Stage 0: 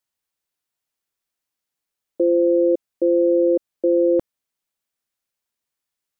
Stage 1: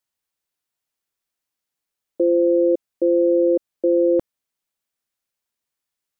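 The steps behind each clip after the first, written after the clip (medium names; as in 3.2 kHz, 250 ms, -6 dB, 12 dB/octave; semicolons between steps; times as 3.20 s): no audible change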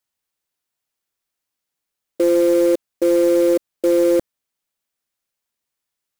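short-mantissa float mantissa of 2-bit; trim +2 dB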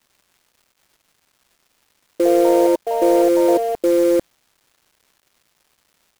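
ever faster or slower copies 607 ms, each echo +5 st, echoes 2, each echo -6 dB; crackle 570 per s -48 dBFS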